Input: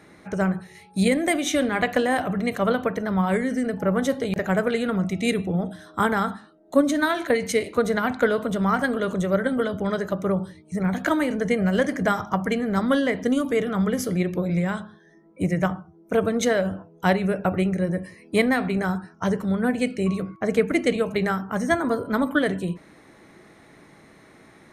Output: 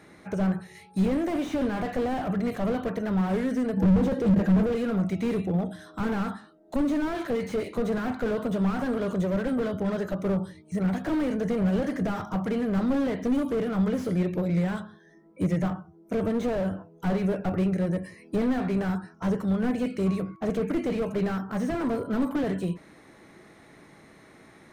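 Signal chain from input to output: 3.76–4.71 s: small resonant body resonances 200/320/480/1600 Hz, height 15 dB -> 12 dB, ringing for 75 ms; slew-rate limiter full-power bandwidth 33 Hz; trim -1.5 dB

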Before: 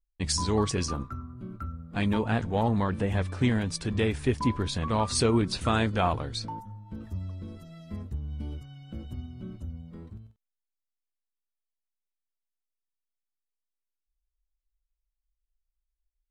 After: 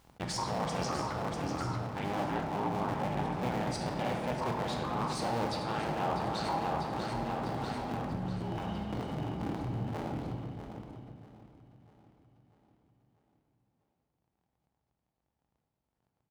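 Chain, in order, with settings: cycle switcher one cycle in 2, inverted; feedback delay 644 ms, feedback 53%, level -12 dB; waveshaping leveller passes 2; high-pass 120 Hz 12 dB/octave; treble shelf 6.2 kHz -10.5 dB; reverse; compression 5:1, threshold -42 dBFS, peak gain reduction 23 dB; reverse; peaking EQ 820 Hz +8.5 dB 0.6 oct; on a send at -2 dB: reverberation RT60 1.5 s, pre-delay 16 ms; on the sum: swell ahead of each attack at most 69 dB/s; trim +4 dB

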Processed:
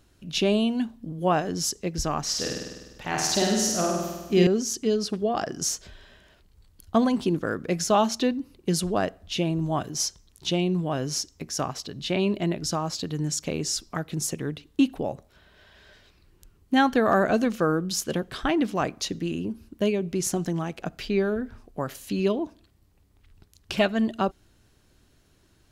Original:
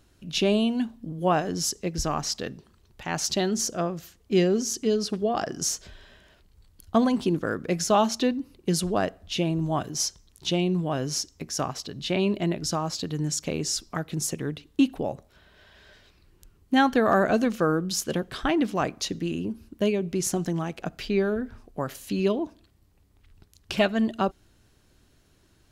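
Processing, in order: 2.23–4.47 s: flutter echo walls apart 8.6 m, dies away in 1.2 s

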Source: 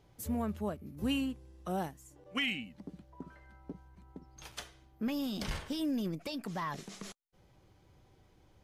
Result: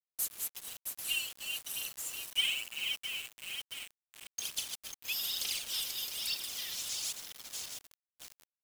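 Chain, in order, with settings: backward echo that repeats 333 ms, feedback 60%, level -8 dB; steep high-pass 2.5 kHz 48 dB/octave; treble shelf 5.5 kHz +9.5 dB; in parallel at -2.5 dB: compression 12:1, threshold -51 dBFS, peak gain reduction 19.5 dB; on the sum: saturation -35.5 dBFS, distortion -10 dB; phaser 1.1 Hz, delay 3.1 ms, feedback 60%; word length cut 8-bit, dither none; trim +5.5 dB

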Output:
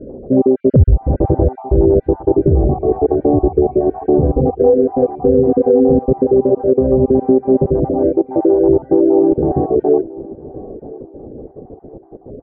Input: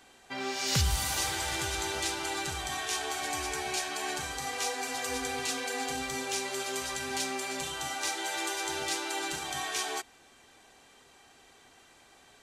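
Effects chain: random holes in the spectrogram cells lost 37%; Chebyshev low-pass 540 Hz, order 4; compression 2.5:1, threshold -43 dBFS, peak gain reduction 11.5 dB; feedback delay 998 ms, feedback 36%, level -20 dB; loudness maximiser +35.5 dB; trim -1 dB

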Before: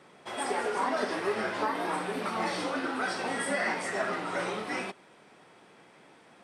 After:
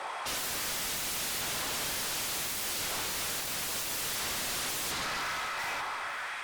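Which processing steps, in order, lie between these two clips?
tracing distortion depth 0.25 ms; high-pass 180 Hz 12 dB/octave; LFO high-pass saw up 0.71 Hz 750–4500 Hz; saturation -31 dBFS, distortion -8 dB; on a send: echo whose repeats swap between lows and highs 448 ms, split 1.6 kHz, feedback 50%, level -9 dB; on the sum: plate-style reverb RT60 4.8 s, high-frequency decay 0.6×, DRR 8.5 dB; sine folder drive 18 dB, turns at -26.5 dBFS; trim -4 dB; MP3 96 kbps 48 kHz

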